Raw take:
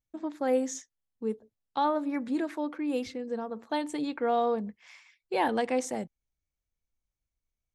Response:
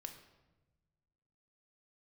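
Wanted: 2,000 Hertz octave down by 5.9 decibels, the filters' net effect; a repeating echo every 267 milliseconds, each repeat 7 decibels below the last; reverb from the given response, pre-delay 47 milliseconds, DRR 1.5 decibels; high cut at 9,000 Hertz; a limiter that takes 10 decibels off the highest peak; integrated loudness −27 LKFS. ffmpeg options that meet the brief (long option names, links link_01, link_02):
-filter_complex "[0:a]lowpass=9000,equalizer=frequency=2000:width_type=o:gain=-7.5,alimiter=level_in=3dB:limit=-24dB:level=0:latency=1,volume=-3dB,aecho=1:1:267|534|801|1068|1335:0.447|0.201|0.0905|0.0407|0.0183,asplit=2[link_01][link_02];[1:a]atrim=start_sample=2205,adelay=47[link_03];[link_02][link_03]afir=irnorm=-1:irlink=0,volume=3dB[link_04];[link_01][link_04]amix=inputs=2:normalize=0,volume=5.5dB"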